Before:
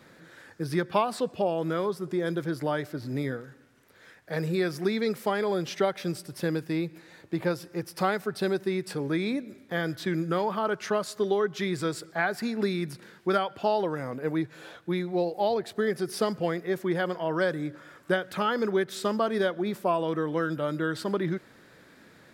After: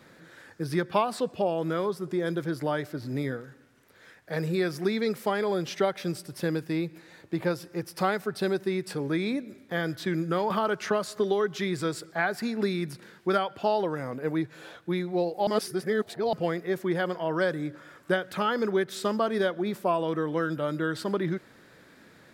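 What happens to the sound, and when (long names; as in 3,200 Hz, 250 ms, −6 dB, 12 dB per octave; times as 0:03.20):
0:10.50–0:11.58: multiband upward and downward compressor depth 70%
0:15.47–0:16.33: reverse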